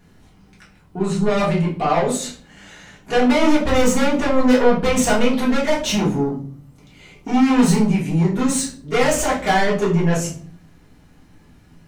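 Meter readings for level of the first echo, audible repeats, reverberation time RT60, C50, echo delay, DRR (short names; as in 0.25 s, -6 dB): none, none, 0.50 s, 7.5 dB, none, -7.5 dB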